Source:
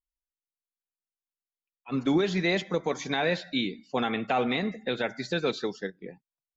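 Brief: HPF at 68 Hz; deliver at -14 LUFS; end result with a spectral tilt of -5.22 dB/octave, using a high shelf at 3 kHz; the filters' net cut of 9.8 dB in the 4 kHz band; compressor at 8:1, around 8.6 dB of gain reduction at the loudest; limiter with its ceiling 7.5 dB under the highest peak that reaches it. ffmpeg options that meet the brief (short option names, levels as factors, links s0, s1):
-af "highpass=68,highshelf=f=3000:g=-6,equalizer=f=4000:t=o:g=-7,acompressor=threshold=0.0355:ratio=8,volume=14.1,alimiter=limit=0.708:level=0:latency=1"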